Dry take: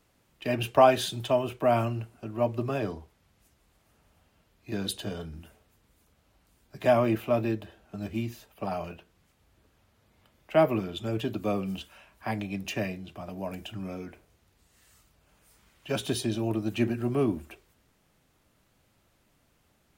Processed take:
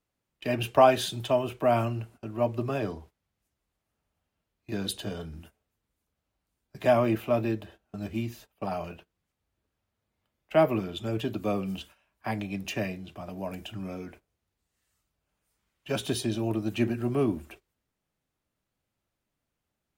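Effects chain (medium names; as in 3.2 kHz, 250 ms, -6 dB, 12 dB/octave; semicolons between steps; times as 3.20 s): gate -49 dBFS, range -16 dB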